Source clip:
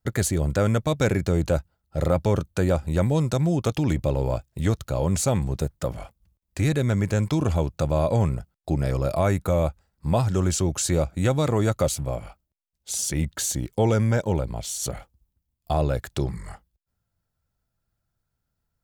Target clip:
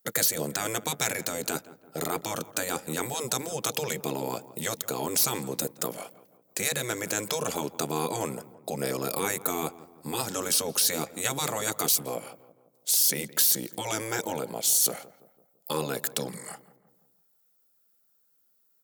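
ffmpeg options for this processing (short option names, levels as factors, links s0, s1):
-filter_complex "[0:a]highpass=f=200:w=0.5412,highpass=f=200:w=1.3066,aemphasis=mode=production:type=75fm,afftfilt=real='re*lt(hypot(re,im),0.2)':imag='im*lt(hypot(re,im),0.2)':win_size=1024:overlap=0.75,equalizer=f=470:t=o:w=0.32:g=8,asplit=2[s0][s1];[s1]adelay=168,lowpass=f=1400:p=1,volume=0.15,asplit=2[s2][s3];[s3]adelay=168,lowpass=f=1400:p=1,volume=0.51,asplit=2[s4][s5];[s5]adelay=168,lowpass=f=1400:p=1,volume=0.51,asplit=2[s6][s7];[s7]adelay=168,lowpass=f=1400:p=1,volume=0.51,asplit=2[s8][s9];[s9]adelay=168,lowpass=f=1400:p=1,volume=0.51[s10];[s2][s4][s6][s8][s10]amix=inputs=5:normalize=0[s11];[s0][s11]amix=inputs=2:normalize=0"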